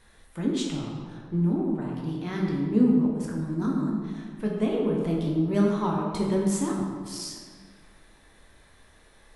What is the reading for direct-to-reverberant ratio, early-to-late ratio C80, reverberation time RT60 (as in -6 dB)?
-2.5 dB, 3.0 dB, 1.8 s